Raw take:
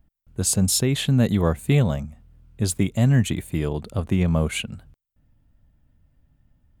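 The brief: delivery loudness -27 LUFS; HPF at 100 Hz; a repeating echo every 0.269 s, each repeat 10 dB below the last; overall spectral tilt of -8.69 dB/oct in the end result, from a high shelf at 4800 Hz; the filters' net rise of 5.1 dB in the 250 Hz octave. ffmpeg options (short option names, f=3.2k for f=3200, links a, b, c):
-af "highpass=100,equalizer=f=250:t=o:g=7,highshelf=f=4.8k:g=-8,aecho=1:1:269|538|807|1076:0.316|0.101|0.0324|0.0104,volume=-7dB"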